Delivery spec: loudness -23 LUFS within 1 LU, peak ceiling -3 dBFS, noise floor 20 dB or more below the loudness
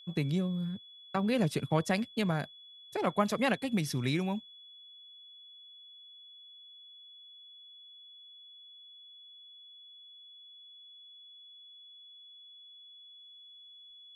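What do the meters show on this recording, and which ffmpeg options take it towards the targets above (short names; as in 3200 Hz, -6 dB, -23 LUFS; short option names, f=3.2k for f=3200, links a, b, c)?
steady tone 3400 Hz; tone level -51 dBFS; loudness -32.0 LUFS; peak -13.5 dBFS; loudness target -23.0 LUFS
-> -af "bandreject=f=3.4k:w=30"
-af "volume=9dB"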